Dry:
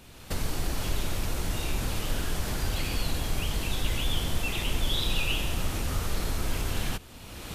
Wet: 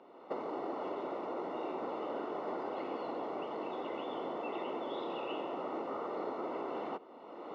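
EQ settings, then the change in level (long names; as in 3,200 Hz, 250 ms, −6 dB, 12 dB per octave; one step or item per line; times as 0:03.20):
Savitzky-Golay smoothing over 65 samples
high-pass filter 330 Hz 24 dB per octave
high-frequency loss of the air 200 metres
+3.5 dB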